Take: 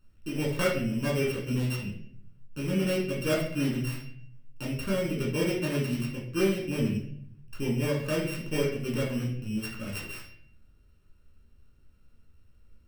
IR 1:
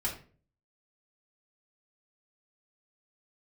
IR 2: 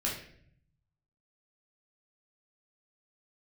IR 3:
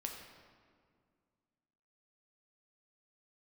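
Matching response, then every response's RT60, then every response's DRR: 2; 0.40 s, 0.60 s, 2.1 s; -4.0 dB, -4.5 dB, 1.0 dB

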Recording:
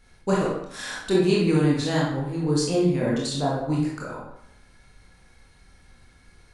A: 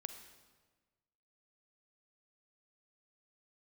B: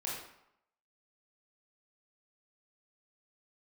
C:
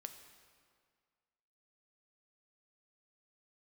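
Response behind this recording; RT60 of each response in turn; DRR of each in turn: B; 1.4 s, 0.75 s, 1.9 s; 7.5 dB, -5.5 dB, 6.5 dB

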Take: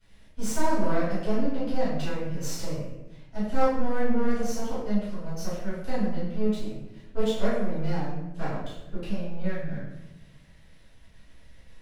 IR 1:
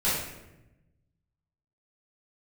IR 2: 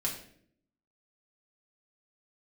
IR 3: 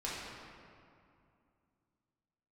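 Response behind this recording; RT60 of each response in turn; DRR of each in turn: 1; 0.95 s, 0.60 s, 2.5 s; -12.0 dB, -3.5 dB, -8.0 dB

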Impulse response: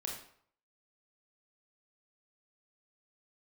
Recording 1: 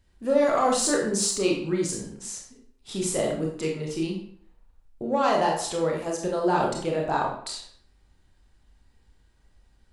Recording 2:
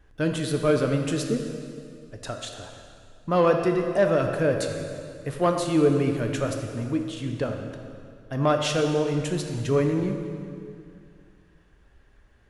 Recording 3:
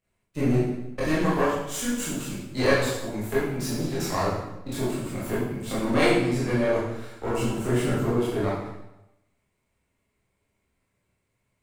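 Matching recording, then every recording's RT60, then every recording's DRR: 1; 0.60 s, 2.4 s, 0.95 s; -1.0 dB, 3.5 dB, -10.0 dB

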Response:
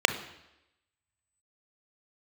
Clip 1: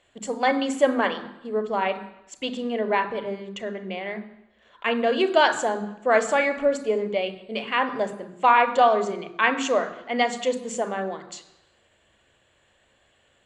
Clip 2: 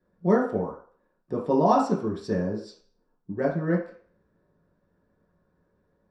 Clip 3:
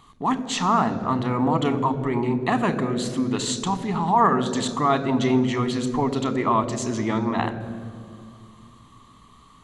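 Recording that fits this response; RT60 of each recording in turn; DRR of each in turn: 1; 0.90 s, 0.45 s, 2.3 s; 9.5 dB, -4.5 dB, 11.5 dB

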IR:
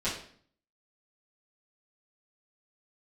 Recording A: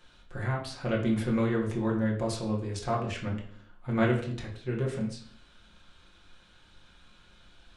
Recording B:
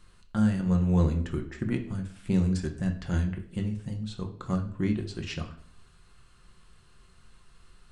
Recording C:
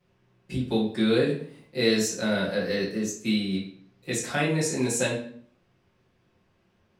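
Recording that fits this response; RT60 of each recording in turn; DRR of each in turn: C; 0.55 s, 0.55 s, 0.55 s; -2.5 dB, 3.5 dB, -12.0 dB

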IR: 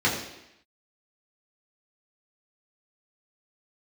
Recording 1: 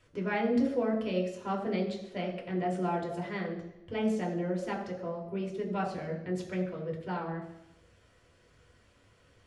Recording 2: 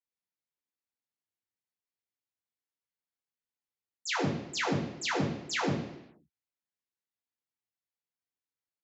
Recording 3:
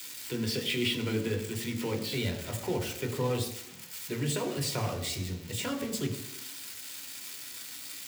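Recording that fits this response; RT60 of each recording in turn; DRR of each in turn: 2; 0.85 s, 0.85 s, 0.85 s; -1.0 dB, -6.5 dB, 3.0 dB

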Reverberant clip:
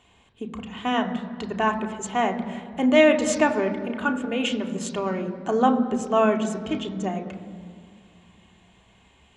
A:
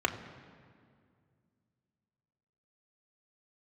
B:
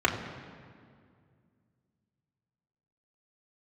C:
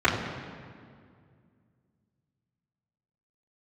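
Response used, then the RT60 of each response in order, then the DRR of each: A; 2.1 s, 2.1 s, 2.1 s; 3.0 dB, -2.0 dB, -10.5 dB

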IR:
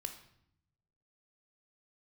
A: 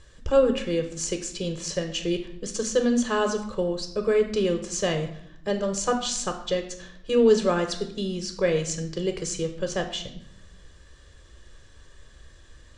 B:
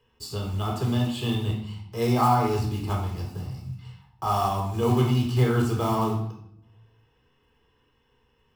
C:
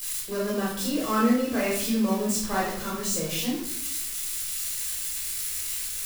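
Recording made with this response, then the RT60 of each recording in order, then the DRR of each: A; 0.70 s, 0.70 s, 0.70 s; 5.5 dB, -0.5 dB, -7.5 dB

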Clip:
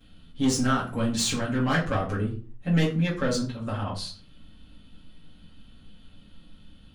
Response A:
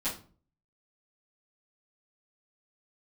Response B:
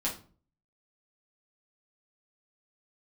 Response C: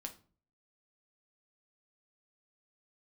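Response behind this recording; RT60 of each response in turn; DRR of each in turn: A; 0.40 s, 0.40 s, 0.45 s; -14.5 dB, -6.0 dB, 3.5 dB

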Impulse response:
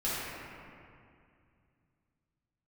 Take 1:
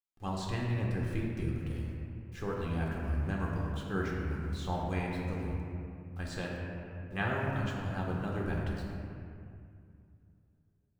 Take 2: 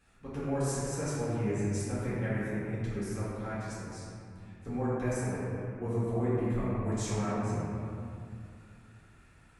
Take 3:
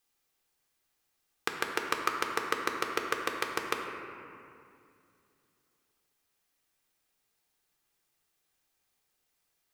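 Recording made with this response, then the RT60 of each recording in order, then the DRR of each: 2; 2.3 s, 2.3 s, 2.4 s; -3.0 dB, -11.0 dB, 1.5 dB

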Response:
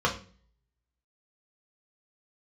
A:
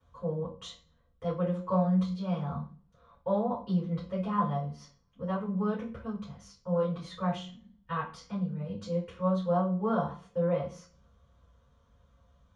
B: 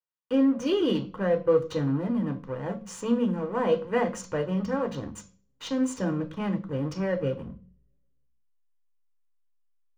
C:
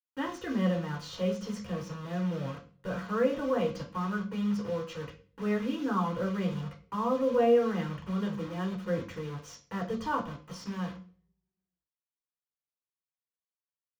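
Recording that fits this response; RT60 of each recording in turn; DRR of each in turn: C; 0.40 s, 0.40 s, 0.40 s; -9.5 dB, 5.0 dB, -2.0 dB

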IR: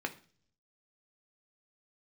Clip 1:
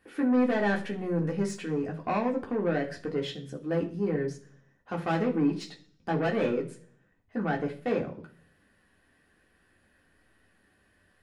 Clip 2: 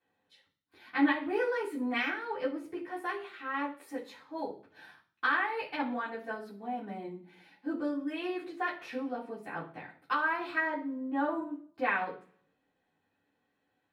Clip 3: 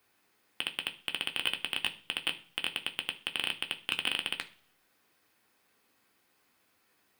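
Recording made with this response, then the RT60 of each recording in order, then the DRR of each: 3; 0.45 s, 0.45 s, 0.45 s; -1.0 dB, -9.0 dB, 5.0 dB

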